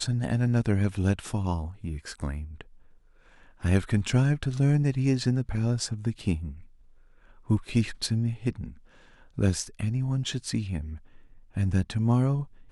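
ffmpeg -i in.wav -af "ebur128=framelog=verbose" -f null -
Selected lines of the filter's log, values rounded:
Integrated loudness:
  I:         -27.7 LUFS
  Threshold: -38.8 LUFS
Loudness range:
  LRA:         5.0 LU
  Threshold: -49.1 LUFS
  LRA low:   -31.5 LUFS
  LRA high:  -26.5 LUFS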